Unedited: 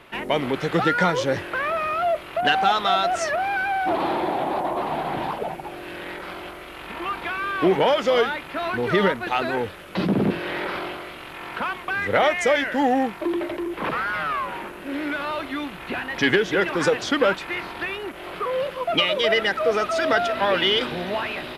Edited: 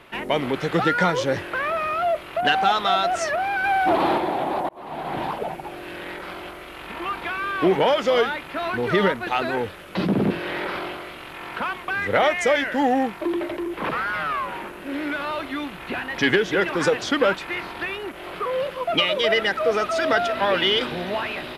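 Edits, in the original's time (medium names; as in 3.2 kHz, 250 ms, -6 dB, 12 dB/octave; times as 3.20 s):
3.64–4.18 s: gain +3.5 dB
4.69–5.19 s: fade in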